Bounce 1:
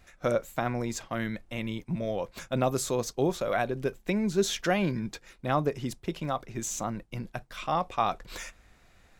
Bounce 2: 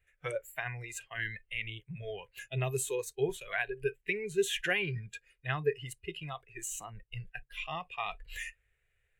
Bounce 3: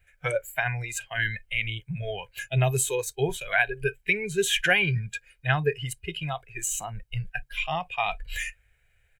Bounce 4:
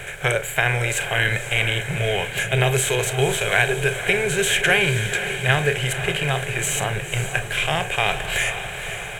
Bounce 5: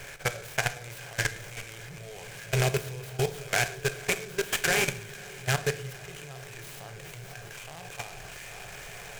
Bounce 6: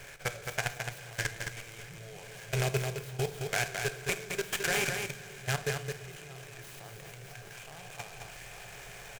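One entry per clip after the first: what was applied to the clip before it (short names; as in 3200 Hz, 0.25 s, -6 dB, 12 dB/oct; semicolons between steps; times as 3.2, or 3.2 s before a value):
spectral noise reduction 17 dB; EQ curve 130 Hz 0 dB, 250 Hz -28 dB, 430 Hz +2 dB, 750 Hz -13 dB, 1200 Hz -10 dB, 1700 Hz +4 dB, 2900 Hz +4 dB, 5000 Hz -18 dB, 8700 Hz +3 dB, 12000 Hz -2 dB
comb 1.3 ms, depth 45%; gain +8.5 dB
per-bin compression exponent 0.4; diffused feedback echo 0.511 s, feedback 60%, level -9.5 dB
level quantiser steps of 19 dB; shoebox room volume 150 m³, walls mixed, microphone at 0.31 m; noise-modulated delay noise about 4300 Hz, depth 0.052 ms; gain -5.5 dB
echo 0.216 s -5.5 dB; gain -5 dB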